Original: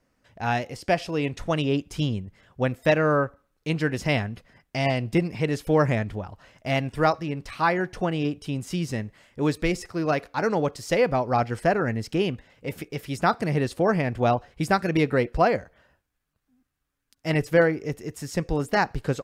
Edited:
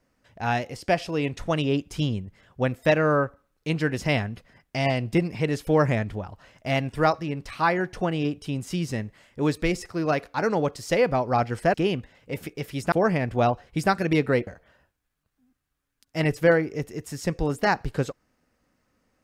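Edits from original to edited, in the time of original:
11.74–12.09 cut
13.27–13.76 cut
15.31–15.57 cut

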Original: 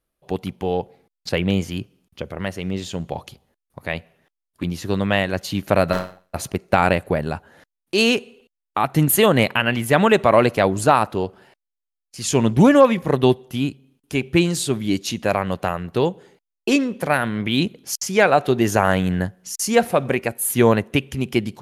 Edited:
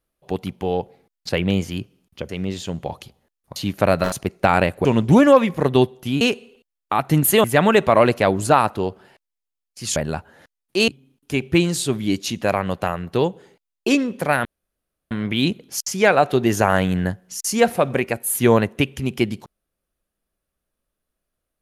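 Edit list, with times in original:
2.29–2.55 cut
3.82–5.45 cut
6.01–6.41 cut
7.14–8.06 swap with 12.33–13.69
9.29–9.81 cut
17.26 insert room tone 0.66 s

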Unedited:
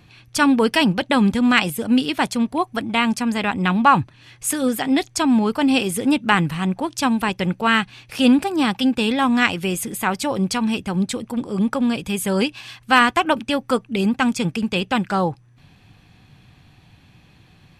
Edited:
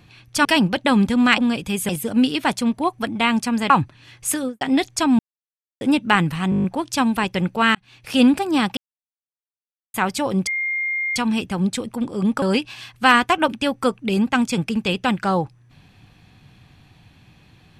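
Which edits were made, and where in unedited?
0.45–0.7 cut
3.44–3.89 cut
4.52–4.8 studio fade out
5.38–6 mute
6.69 stutter 0.02 s, 8 plays
7.8–8.17 fade in
8.82–9.99 mute
10.52 add tone 2120 Hz -20.5 dBFS 0.69 s
11.78–12.29 move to 1.63

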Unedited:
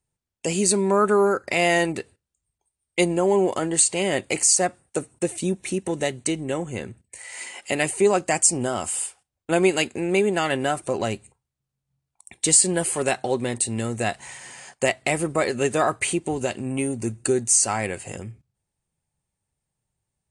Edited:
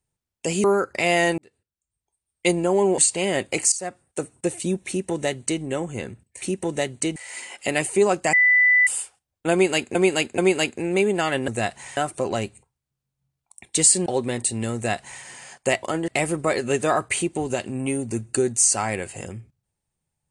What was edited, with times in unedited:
0.64–1.17 cut
1.91–2.99 fade in
3.51–3.76 move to 14.99
4.5–5.08 fade in, from -15 dB
5.66–6.4 copy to 7.2
8.37–8.91 bleep 1990 Hz -13 dBFS
9.56–9.99 loop, 3 plays
12.75–13.22 cut
13.91–14.4 copy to 10.66

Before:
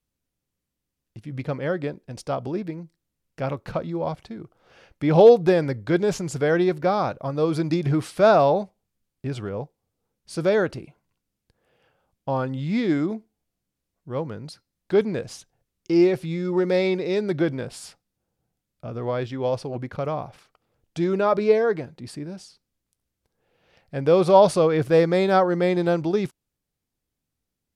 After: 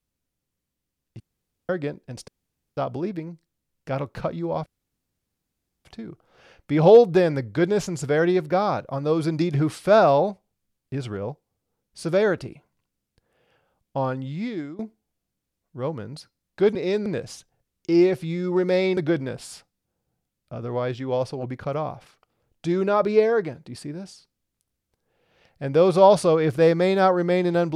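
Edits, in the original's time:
1.2–1.69 room tone
2.28 insert room tone 0.49 s
4.17 insert room tone 1.19 s
12.33–13.11 fade out, to -18.5 dB
16.98–17.29 move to 15.07

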